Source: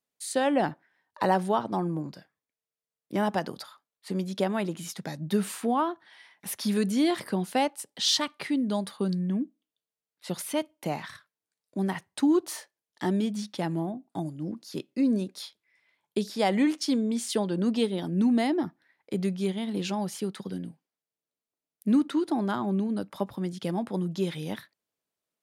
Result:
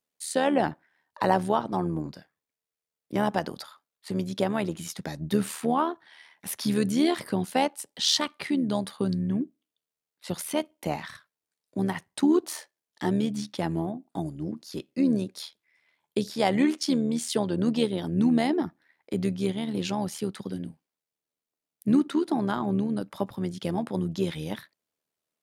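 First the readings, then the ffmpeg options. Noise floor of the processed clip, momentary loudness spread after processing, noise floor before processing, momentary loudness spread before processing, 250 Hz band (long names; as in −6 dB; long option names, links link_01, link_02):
below −85 dBFS, 13 LU, below −85 dBFS, 13 LU, +1.0 dB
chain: -af "tremolo=f=78:d=0.571,volume=3.5dB"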